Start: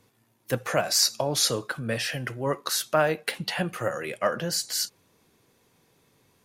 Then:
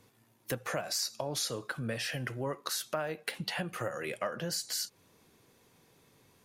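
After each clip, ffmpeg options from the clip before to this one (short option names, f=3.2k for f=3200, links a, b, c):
-af "acompressor=threshold=-33dB:ratio=4"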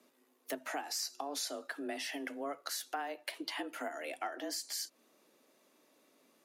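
-af "afreqshift=140,volume=-4.5dB"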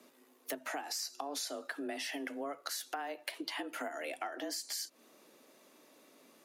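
-af "acompressor=threshold=-46dB:ratio=2.5,volume=6.5dB"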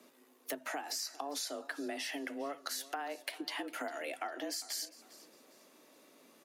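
-af "aecho=1:1:403|806|1209:0.112|0.037|0.0122"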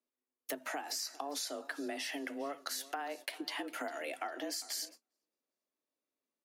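-af "agate=range=-32dB:threshold=-51dB:ratio=16:detection=peak"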